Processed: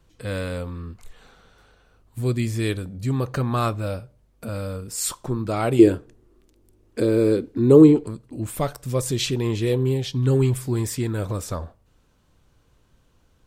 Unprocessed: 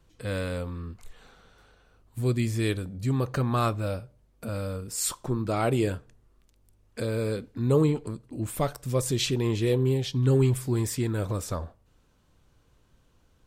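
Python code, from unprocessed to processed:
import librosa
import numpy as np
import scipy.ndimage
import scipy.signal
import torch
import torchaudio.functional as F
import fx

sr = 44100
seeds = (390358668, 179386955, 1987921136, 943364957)

y = fx.peak_eq(x, sr, hz=340.0, db=14.5, octaves=0.85, at=(5.79, 8.04))
y = F.gain(torch.from_numpy(y), 2.5).numpy()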